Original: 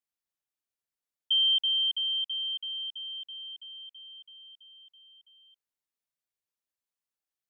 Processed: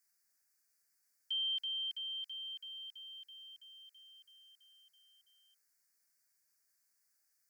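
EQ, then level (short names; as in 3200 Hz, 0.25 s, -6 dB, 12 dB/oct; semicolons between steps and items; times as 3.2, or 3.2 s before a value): EQ curve 1100 Hz 0 dB, 1600 Hz +12 dB, 2300 Hz +6 dB, 3300 Hz -17 dB, 4700 Hz +13 dB; +2.0 dB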